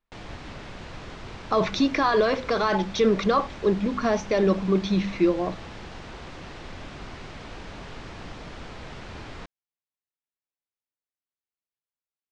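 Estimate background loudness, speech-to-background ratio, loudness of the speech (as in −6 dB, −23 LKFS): −41.0 LKFS, 17.0 dB, −24.0 LKFS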